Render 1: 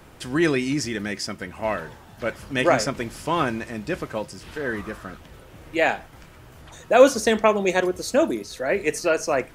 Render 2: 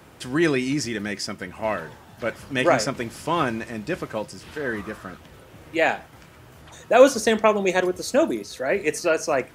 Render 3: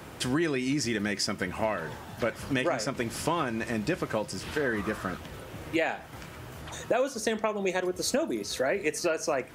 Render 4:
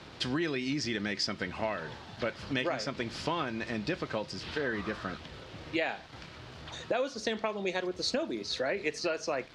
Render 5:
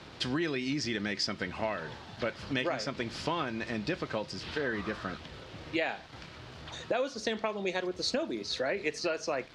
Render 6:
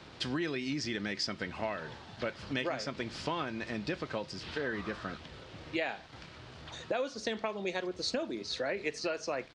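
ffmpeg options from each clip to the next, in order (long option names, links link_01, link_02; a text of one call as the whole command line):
ffmpeg -i in.wav -af "highpass=73" out.wav
ffmpeg -i in.wav -af "acompressor=threshold=-29dB:ratio=10,volume=4.5dB" out.wav
ffmpeg -i in.wav -af "aeval=exprs='val(0)*gte(abs(val(0)),0.00447)':channel_layout=same,lowpass=frequency=4300:width_type=q:width=2.2,volume=-4.5dB" out.wav
ffmpeg -i in.wav -af anull out.wav
ffmpeg -i in.wav -af "aresample=22050,aresample=44100,volume=-2.5dB" out.wav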